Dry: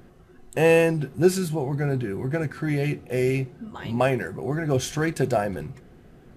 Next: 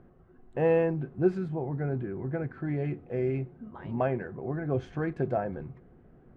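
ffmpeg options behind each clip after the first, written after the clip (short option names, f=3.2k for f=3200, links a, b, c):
-af "lowpass=1.4k,volume=-6dB"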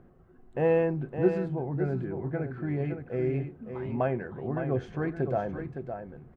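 -af "aecho=1:1:562:0.398"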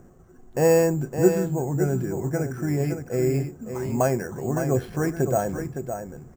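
-af "acrusher=samples=6:mix=1:aa=0.000001,volume=6dB"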